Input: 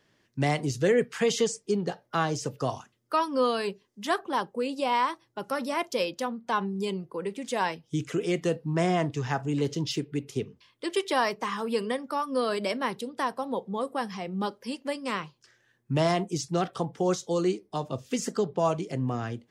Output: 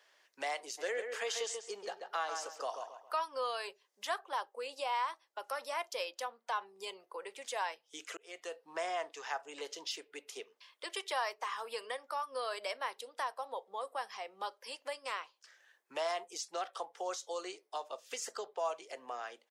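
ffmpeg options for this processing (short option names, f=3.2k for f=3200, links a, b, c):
-filter_complex "[0:a]asplit=3[a][b][c];[a]afade=t=out:st=0.77:d=0.02[d];[b]asplit=2[e][f];[f]adelay=136,lowpass=f=2.6k:p=1,volume=-6dB,asplit=2[g][h];[h]adelay=136,lowpass=f=2.6k:p=1,volume=0.27,asplit=2[i][j];[j]adelay=136,lowpass=f=2.6k:p=1,volume=0.27[k];[e][g][i][k]amix=inputs=4:normalize=0,afade=t=in:st=0.77:d=0.02,afade=t=out:st=3.16:d=0.02[l];[c]afade=t=in:st=3.16:d=0.02[m];[d][l][m]amix=inputs=3:normalize=0,asplit=2[n][o];[n]atrim=end=8.17,asetpts=PTS-STARTPTS,afade=t=out:st=8.166:d=0.004:c=hsin[p];[o]atrim=start=8.17,asetpts=PTS-STARTPTS,afade=t=in:d=0.59[q];[p][q]concat=n=2:v=0:a=1,highpass=f=570:w=0.5412,highpass=f=570:w=1.3066,acompressor=threshold=-53dB:ratio=1.5,volume=2dB"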